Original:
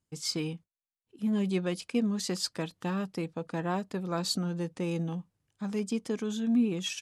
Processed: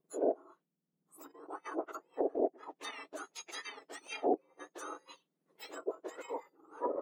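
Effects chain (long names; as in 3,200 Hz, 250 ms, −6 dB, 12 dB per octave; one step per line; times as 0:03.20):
frequency axis turned over on the octave scale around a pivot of 1,800 Hz
treble cut that deepens with the level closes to 500 Hz, closed at −30 dBFS
transient designer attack 0 dB, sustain −7 dB
level +3 dB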